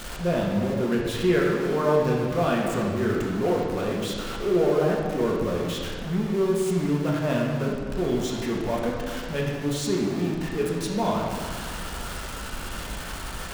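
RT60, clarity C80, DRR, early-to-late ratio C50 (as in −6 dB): 1.7 s, 3.0 dB, −3.0 dB, 1.0 dB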